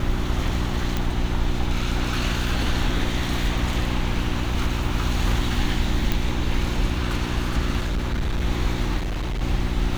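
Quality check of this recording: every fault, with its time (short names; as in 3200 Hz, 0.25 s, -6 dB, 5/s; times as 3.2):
hum 60 Hz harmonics 6 -27 dBFS
0.97 pop
6.12 pop
7.8–8.44 clipped -20 dBFS
8.97–9.42 clipped -23 dBFS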